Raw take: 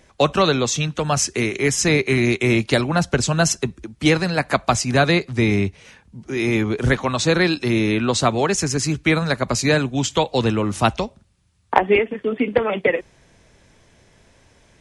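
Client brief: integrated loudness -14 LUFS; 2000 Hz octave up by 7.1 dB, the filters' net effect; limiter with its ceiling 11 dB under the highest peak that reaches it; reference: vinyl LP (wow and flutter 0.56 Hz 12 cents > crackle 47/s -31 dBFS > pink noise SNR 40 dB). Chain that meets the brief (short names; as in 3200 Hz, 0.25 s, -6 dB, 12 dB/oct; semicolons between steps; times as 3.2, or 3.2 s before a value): bell 2000 Hz +8.5 dB; limiter -6.5 dBFS; wow and flutter 0.56 Hz 12 cents; crackle 47/s -31 dBFS; pink noise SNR 40 dB; gain +5 dB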